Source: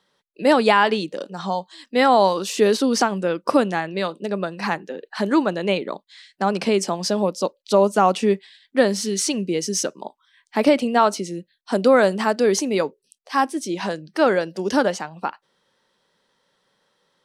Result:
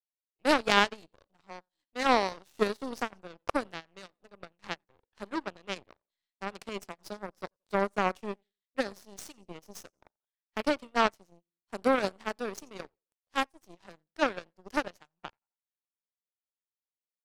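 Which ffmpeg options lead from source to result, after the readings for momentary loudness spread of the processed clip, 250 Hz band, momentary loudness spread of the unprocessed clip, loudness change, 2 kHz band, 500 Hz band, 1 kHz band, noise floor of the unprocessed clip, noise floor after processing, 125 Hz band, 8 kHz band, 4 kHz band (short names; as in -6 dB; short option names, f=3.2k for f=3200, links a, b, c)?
22 LU, -14.5 dB, 12 LU, -11.0 dB, -8.0 dB, -14.5 dB, -11.0 dB, -71 dBFS, under -85 dBFS, -16.0 dB, -19.0 dB, -9.0 dB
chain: -af "aecho=1:1:88|176|264:0.112|0.0359|0.0115,aeval=exprs='0.794*(cos(1*acos(clip(val(0)/0.794,-1,1)))-cos(1*PI/2))+0.251*(cos(3*acos(clip(val(0)/0.794,-1,1)))-cos(3*PI/2))+0.0282*(cos(5*acos(clip(val(0)/0.794,-1,1)))-cos(5*PI/2))+0.0251*(cos(7*acos(clip(val(0)/0.794,-1,1)))-cos(7*PI/2))+0.00794*(cos(8*acos(clip(val(0)/0.794,-1,1)))-cos(8*PI/2))':c=same,tremolo=f=3.8:d=0.52"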